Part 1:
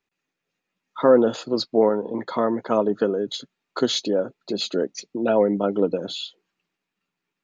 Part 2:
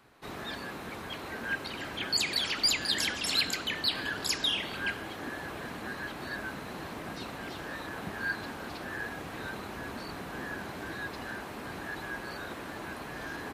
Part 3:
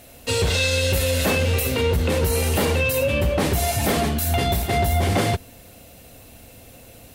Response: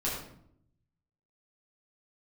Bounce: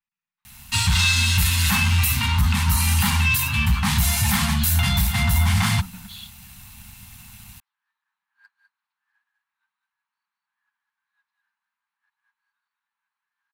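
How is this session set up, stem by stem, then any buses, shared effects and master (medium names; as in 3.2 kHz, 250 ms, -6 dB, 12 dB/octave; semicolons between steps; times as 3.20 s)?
-8.5 dB, 0.00 s, bus A, no send, no echo send, none
-9.5 dB, 0.15 s, bus A, no send, echo send -7 dB, high-pass 790 Hz; upward expansion 2.5:1, over -43 dBFS
+1.0 dB, 0.45 s, no bus, no send, no echo send, none
bus A: 0.0 dB, tone controls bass 0 dB, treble -7 dB; peak limiter -20 dBFS, peak gain reduction 6.5 dB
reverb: none
echo: delay 201 ms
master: waveshaping leveller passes 1; elliptic band-stop 210–890 Hz, stop band 40 dB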